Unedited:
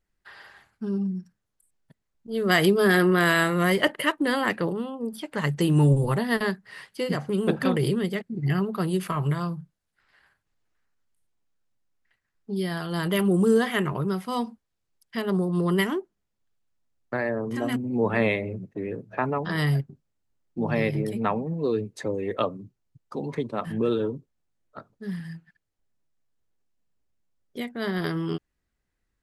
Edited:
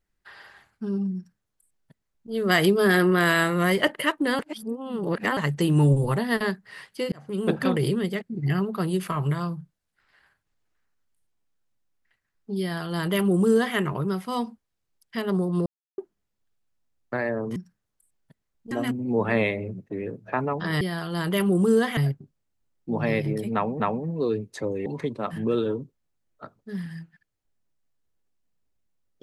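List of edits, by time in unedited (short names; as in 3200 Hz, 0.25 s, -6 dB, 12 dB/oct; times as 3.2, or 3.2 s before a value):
1.16–2.31 copy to 17.56
4.39–5.37 reverse
7.12–7.48 fade in
12.6–13.76 copy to 19.66
15.66–15.98 mute
21.23–21.49 loop, 2 plays
22.29–23.2 cut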